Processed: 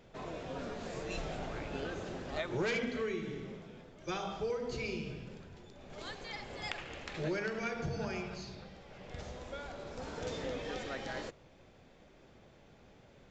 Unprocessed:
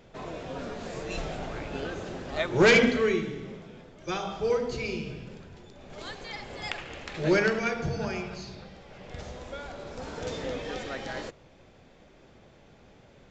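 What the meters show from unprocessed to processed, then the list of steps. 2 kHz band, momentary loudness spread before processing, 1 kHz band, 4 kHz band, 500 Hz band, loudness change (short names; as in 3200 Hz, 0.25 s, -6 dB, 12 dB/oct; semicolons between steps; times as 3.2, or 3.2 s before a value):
-11.5 dB, 19 LU, -7.5 dB, -9.0 dB, -10.0 dB, -10.5 dB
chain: compressor 6:1, threshold -28 dBFS, peak gain reduction 11.5 dB; gain -4.5 dB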